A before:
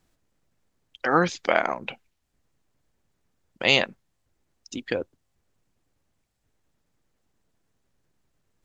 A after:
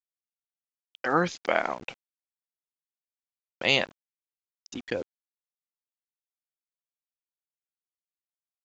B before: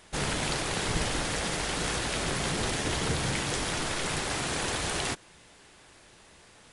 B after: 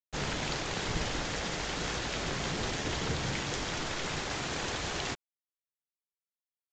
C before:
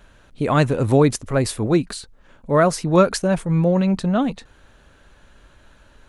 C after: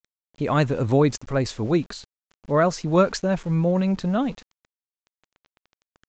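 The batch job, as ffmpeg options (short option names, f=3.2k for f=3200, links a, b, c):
-af "aeval=exprs='val(0)*gte(abs(val(0)),0.0106)':c=same,aresample=16000,aresample=44100,volume=-3.5dB"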